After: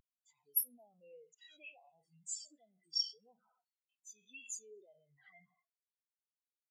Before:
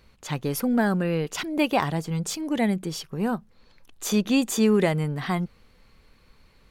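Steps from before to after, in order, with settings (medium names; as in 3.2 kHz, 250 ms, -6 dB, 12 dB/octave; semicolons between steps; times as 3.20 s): spectral sustain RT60 0.66 s; touch-sensitive flanger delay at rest 6.8 ms, full sweep at -19.5 dBFS; compression 10:1, threshold -34 dBFS, peak gain reduction 18 dB; peaking EQ 240 Hz -7.5 dB 1.5 oct; slow attack 232 ms; high-pass 140 Hz 6 dB/octave; echo whose repeats swap between lows and highs 113 ms, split 870 Hz, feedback 53%, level -12 dB; waveshaping leveller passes 2; peak limiter -35 dBFS, peak gain reduction 9 dB; tilt EQ +3.5 dB/octave; spectral contrast expander 4:1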